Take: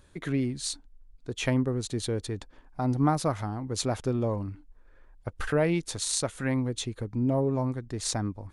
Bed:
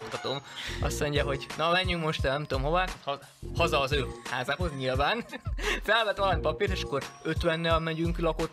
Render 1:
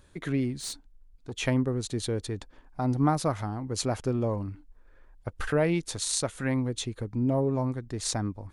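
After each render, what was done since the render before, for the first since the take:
0:00.58–0:01.33: tube saturation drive 30 dB, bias 0.3
0:03.63–0:04.39: notch filter 3,600 Hz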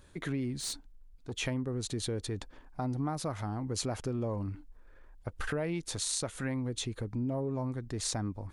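downward compressor 6 to 1, threshold −30 dBFS, peak gain reduction 11 dB
transient designer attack −2 dB, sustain +2 dB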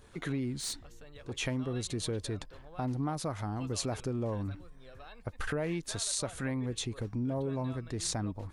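mix in bed −25 dB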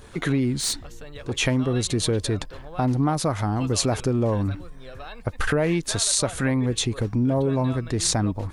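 level +11.5 dB

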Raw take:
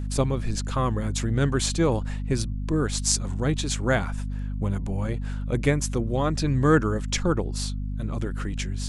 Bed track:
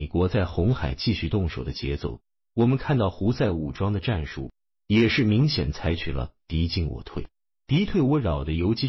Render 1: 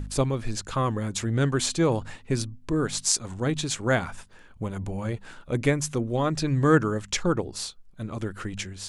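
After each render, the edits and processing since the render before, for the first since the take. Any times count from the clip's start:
hum removal 50 Hz, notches 5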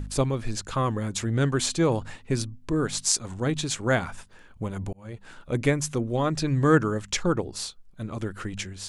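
0:04.93–0:05.41: fade in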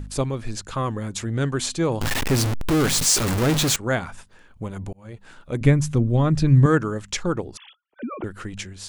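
0:02.01–0:03.76: converter with a step at zero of −17.5 dBFS
0:05.61–0:06.66: bass and treble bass +12 dB, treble −3 dB
0:07.57–0:08.24: three sine waves on the formant tracks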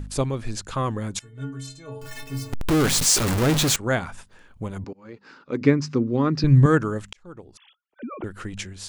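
0:01.19–0:02.53: stiff-string resonator 130 Hz, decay 0.67 s, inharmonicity 0.03
0:04.84–0:06.44: loudspeaker in its box 210–5,300 Hz, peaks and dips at 270 Hz +6 dB, 420 Hz +4 dB, 670 Hz −9 dB, 1,200 Hz +3 dB, 3,300 Hz −8 dB, 5,000 Hz +9 dB
0:07.13–0:08.51: fade in linear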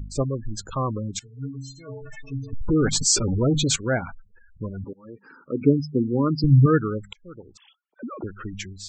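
Butterworth low-pass 8,500 Hz 96 dB per octave
gate on every frequency bin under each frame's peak −15 dB strong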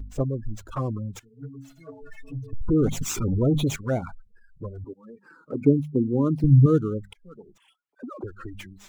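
running median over 9 samples
flanger swept by the level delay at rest 7.3 ms, full sweep at −19.5 dBFS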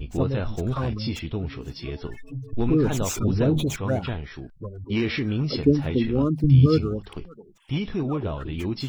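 mix in bed track −5 dB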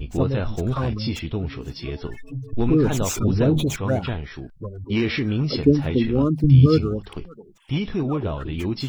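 level +2.5 dB

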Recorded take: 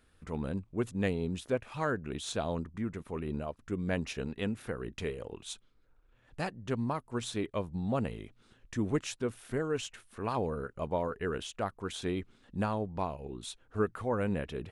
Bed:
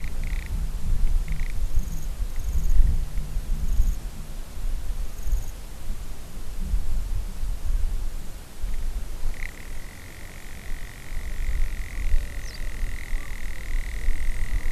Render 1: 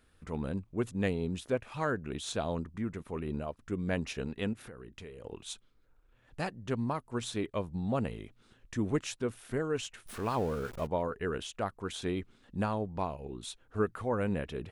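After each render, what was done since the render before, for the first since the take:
0:04.53–0:05.24: downward compressor 4 to 1, threshold −45 dBFS
0:10.06–0:10.87: converter with a step at zero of −41.5 dBFS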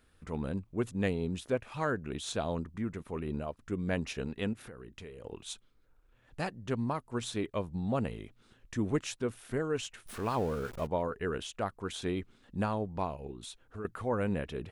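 0:13.31–0:13.85: downward compressor 2.5 to 1, threshold −42 dBFS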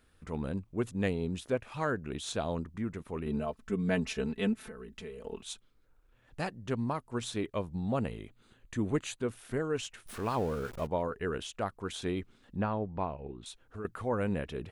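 0:03.26–0:05.42: comb filter 4.6 ms, depth 86%
0:07.95–0:09.25: Butterworth band-reject 5,400 Hz, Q 6.2
0:12.56–0:13.46: low-pass filter 2,700 Hz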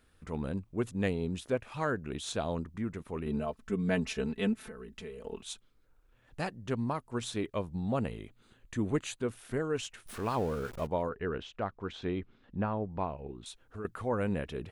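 0:11.09–0:12.90: high-frequency loss of the air 200 metres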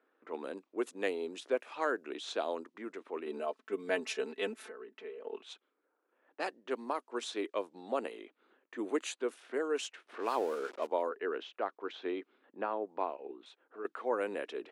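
low-pass that shuts in the quiet parts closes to 1,400 Hz, open at −28.5 dBFS
Butterworth high-pass 300 Hz 36 dB per octave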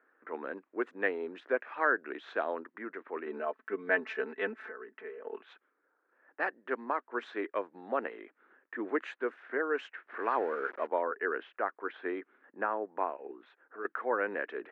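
low-pass with resonance 1,700 Hz, resonance Q 3.2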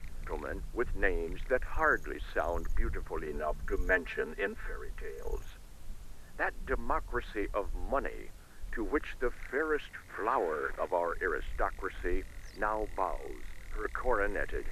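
mix in bed −14 dB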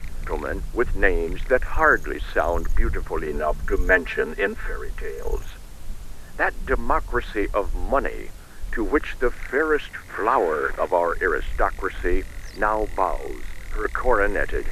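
level +11 dB

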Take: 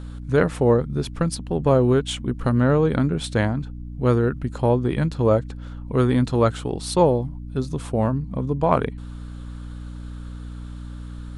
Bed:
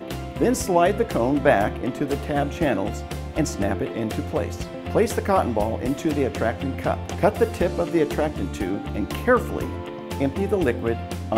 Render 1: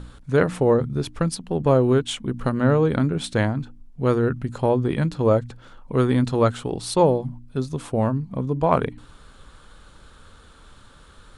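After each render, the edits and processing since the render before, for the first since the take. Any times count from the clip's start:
hum removal 60 Hz, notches 5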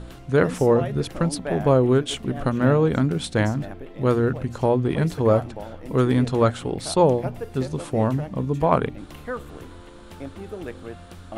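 mix in bed −13 dB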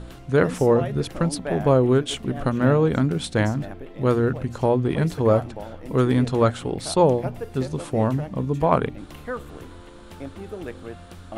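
no processing that can be heard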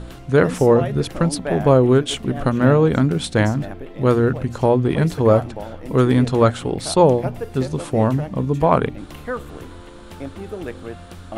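level +4 dB
brickwall limiter −2 dBFS, peak gain reduction 1.5 dB

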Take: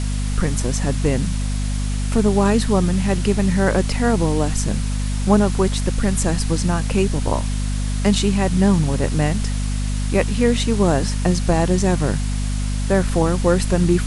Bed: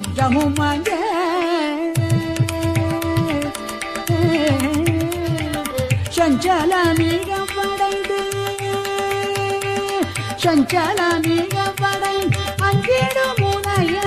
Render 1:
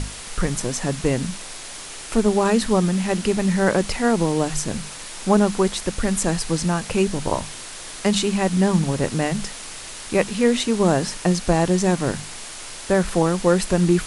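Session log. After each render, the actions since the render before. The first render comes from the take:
mains-hum notches 50/100/150/200/250 Hz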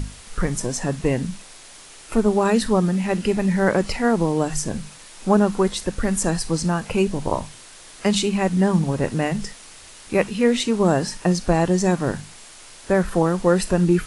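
noise reduction from a noise print 8 dB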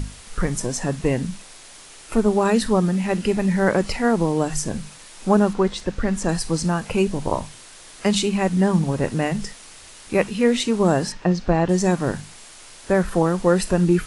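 0:05.53–0:06.29: high-frequency loss of the air 78 metres
0:11.12–0:11.69: high-frequency loss of the air 150 metres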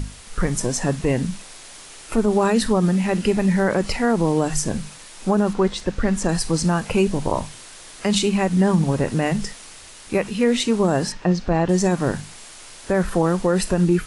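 automatic gain control gain up to 3 dB
brickwall limiter −8.5 dBFS, peak gain reduction 6 dB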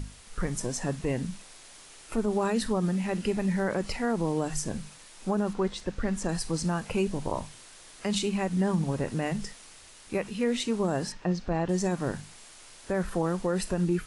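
level −9 dB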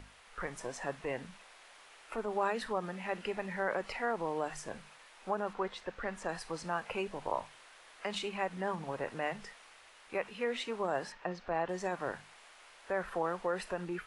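three-way crossover with the lows and the highs turned down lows −18 dB, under 490 Hz, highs −15 dB, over 3,100 Hz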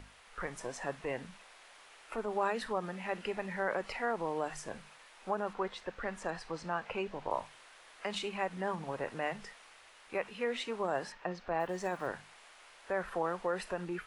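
0:06.30–0:07.31: high-frequency loss of the air 73 metres
0:11.60–0:12.08: one scale factor per block 7 bits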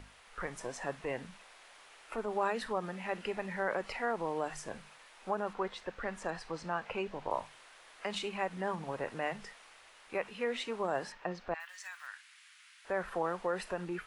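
0:11.54–0:12.85: high-pass filter 1,500 Hz 24 dB per octave

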